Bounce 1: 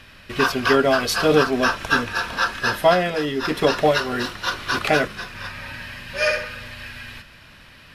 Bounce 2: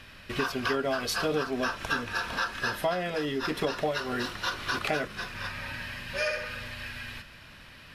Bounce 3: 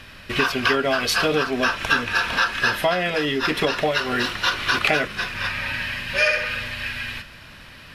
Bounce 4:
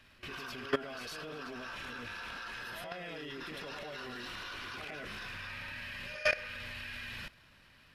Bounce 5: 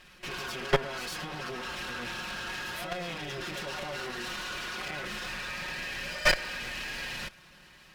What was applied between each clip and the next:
compressor 3:1, threshold -25 dBFS, peak gain reduction 11 dB; gain -3 dB
dynamic EQ 2500 Hz, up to +7 dB, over -45 dBFS, Q 1; gain +6.5 dB
transient shaper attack -11 dB, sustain +7 dB; reverse echo 0.105 s -6 dB; level quantiser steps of 18 dB; gain -7.5 dB
minimum comb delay 5.5 ms; gain +8 dB

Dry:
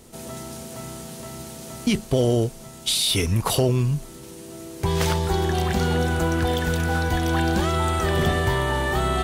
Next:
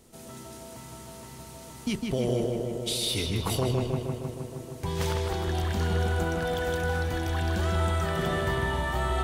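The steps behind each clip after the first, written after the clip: darkening echo 0.156 s, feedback 75%, low-pass 3700 Hz, level -3 dB; gain -8.5 dB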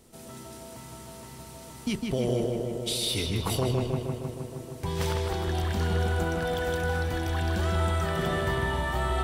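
notch 6600 Hz, Q 22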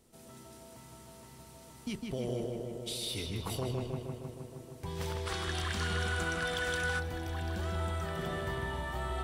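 spectral gain 5.27–6.99, 1000–11000 Hz +10 dB; gain -8.5 dB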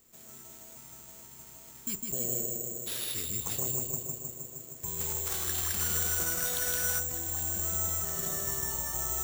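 careless resampling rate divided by 6×, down none, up zero stuff; gain -5 dB

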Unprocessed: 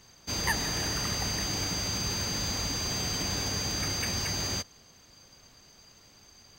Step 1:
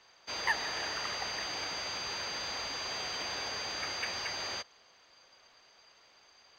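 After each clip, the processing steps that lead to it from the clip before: three-band isolator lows -21 dB, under 450 Hz, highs -22 dB, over 4700 Hz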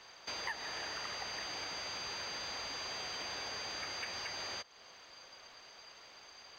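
compressor 3:1, threshold -49 dBFS, peak gain reduction 17.5 dB; gain +6 dB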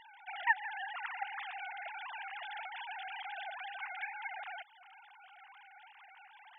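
sine-wave speech; gain +1 dB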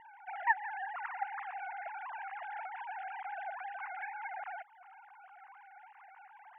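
Bessel low-pass 1300 Hz, order 8; gain +4.5 dB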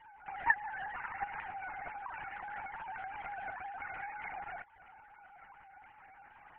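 LPC vocoder at 8 kHz whisper; gain -1 dB

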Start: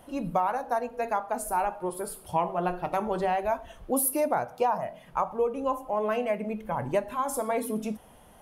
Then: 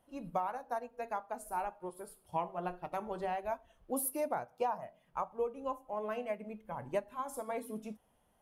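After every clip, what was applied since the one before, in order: upward expander 1.5:1, over -44 dBFS; gain -7.5 dB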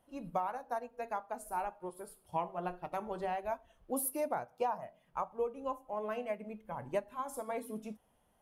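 nothing audible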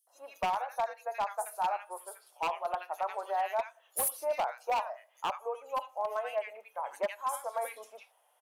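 inverse Chebyshev high-pass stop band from 180 Hz, stop band 60 dB; three bands offset in time highs, lows, mids 70/150 ms, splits 1600/4900 Hz; wavefolder -31 dBFS; gain +7.5 dB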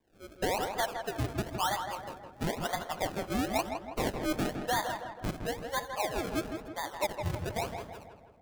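decimation with a swept rate 32×, swing 100% 0.99 Hz; darkening echo 0.162 s, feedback 53%, low-pass 2300 Hz, level -6 dB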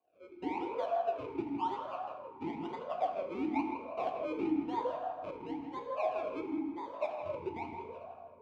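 air absorption 82 m; reverb RT60 2.2 s, pre-delay 5 ms, DRR 3 dB; vowel sweep a-u 0.98 Hz; gain +5.5 dB

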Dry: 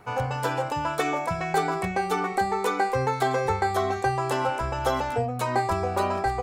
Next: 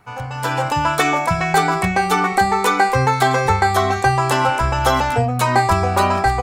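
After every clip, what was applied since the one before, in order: bell 450 Hz -7.5 dB 1.3 oct; AGC gain up to 13 dB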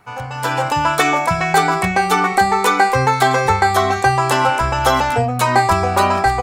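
low shelf 170 Hz -5 dB; gain +2 dB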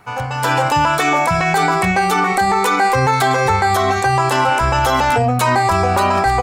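limiter -11 dBFS, peak gain reduction 9.5 dB; gain +4.5 dB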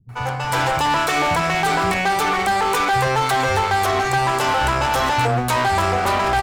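one-sided clip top -22.5 dBFS, bottom -11 dBFS; bands offset in time lows, highs 90 ms, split 200 Hz

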